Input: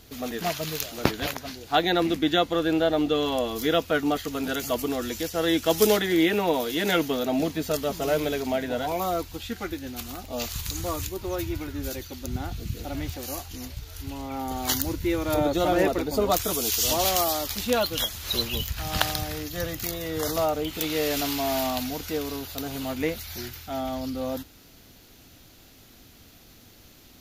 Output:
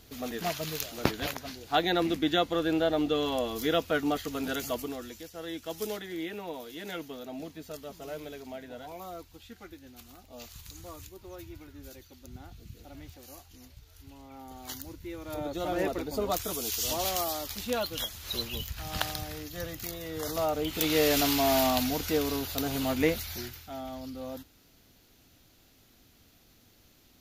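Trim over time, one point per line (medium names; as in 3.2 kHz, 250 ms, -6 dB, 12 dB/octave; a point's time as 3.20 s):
4.62 s -4 dB
5.25 s -15 dB
15.11 s -15 dB
15.88 s -7 dB
20.24 s -7 dB
20.93 s +1.5 dB
23.16 s +1.5 dB
23.77 s -9 dB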